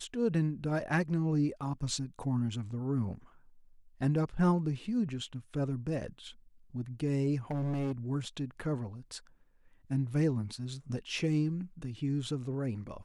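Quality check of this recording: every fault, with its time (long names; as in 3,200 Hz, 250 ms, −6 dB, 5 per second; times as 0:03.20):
0:07.51–0:07.92: clipping −30 dBFS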